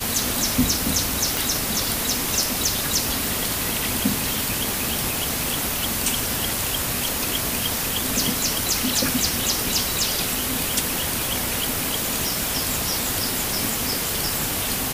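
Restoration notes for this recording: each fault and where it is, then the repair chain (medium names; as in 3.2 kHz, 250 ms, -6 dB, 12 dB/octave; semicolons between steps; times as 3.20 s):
1.37 s: pop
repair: de-click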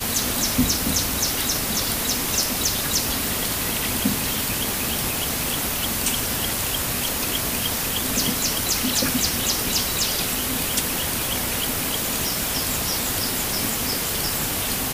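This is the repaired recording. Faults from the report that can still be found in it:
nothing left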